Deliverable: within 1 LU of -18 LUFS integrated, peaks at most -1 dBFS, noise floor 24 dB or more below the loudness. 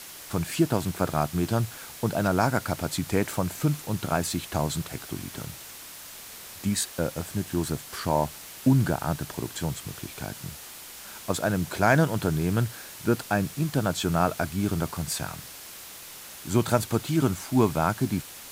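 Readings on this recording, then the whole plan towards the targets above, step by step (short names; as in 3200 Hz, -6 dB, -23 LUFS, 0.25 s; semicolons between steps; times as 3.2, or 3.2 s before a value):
noise floor -43 dBFS; noise floor target -52 dBFS; loudness -27.5 LUFS; peak -6.0 dBFS; loudness target -18.0 LUFS
-> noise print and reduce 9 dB; gain +9.5 dB; limiter -1 dBFS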